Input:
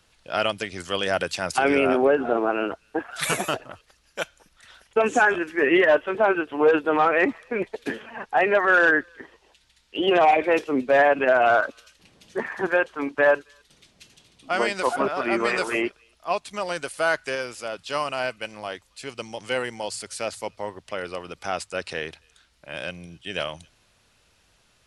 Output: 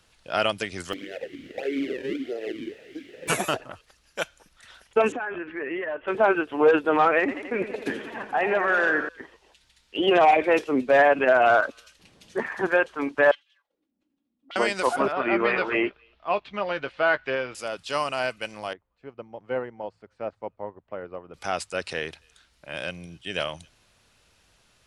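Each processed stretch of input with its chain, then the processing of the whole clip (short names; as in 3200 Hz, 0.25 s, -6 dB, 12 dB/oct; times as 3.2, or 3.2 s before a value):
0.92–3.27 decimation with a swept rate 37×, swing 160% 1.6 Hz + added noise pink -34 dBFS + vowel sweep e-i 2.5 Hz
5.12–6.08 LPF 2800 Hz 24 dB/oct + compressor 4:1, threshold -30 dBFS
7.19–9.09 compressor 2:1, threshold -22 dBFS + warbling echo 86 ms, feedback 74%, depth 111 cents, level -10.5 dB
13.31–14.56 minimum comb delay 3.6 ms + bell 350 Hz -6.5 dB 2.6 oct + auto-wah 200–3100 Hz, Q 5.4, up, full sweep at -32.5 dBFS
15.12–17.55 LPF 3400 Hz 24 dB/oct + doubler 15 ms -11 dB
18.73–21.34 LPF 1100 Hz + upward expander, over -46 dBFS
whole clip: dry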